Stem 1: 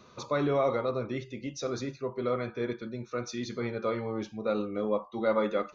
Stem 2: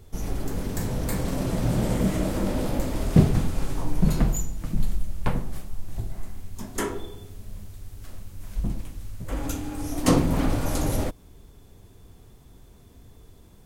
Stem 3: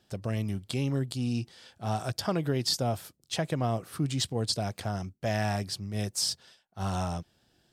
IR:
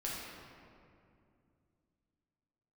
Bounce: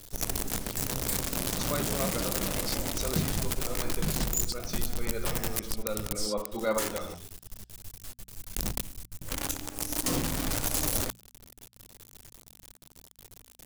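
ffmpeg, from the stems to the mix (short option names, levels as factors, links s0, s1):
-filter_complex "[0:a]adelay=1400,volume=0.891,asplit=2[s0][s1];[s1]volume=0.237[s2];[1:a]acrusher=bits=5:dc=4:mix=0:aa=0.000001,volume=0.562[s3];[2:a]volume=0.211,asplit=2[s4][s5];[s5]apad=whole_len=315031[s6];[s0][s6]sidechaincompress=threshold=0.00316:ratio=8:attack=5.3:release=102[s7];[3:a]atrim=start_sample=2205[s8];[s2][s8]afir=irnorm=-1:irlink=0[s9];[s7][s3][s4][s9]amix=inputs=4:normalize=0,highshelf=f=3200:g=11.5,bandreject=f=60:t=h:w=6,bandreject=f=120:t=h:w=6,bandreject=f=180:t=h:w=6,bandreject=f=240:t=h:w=6,alimiter=limit=0.15:level=0:latency=1:release=178"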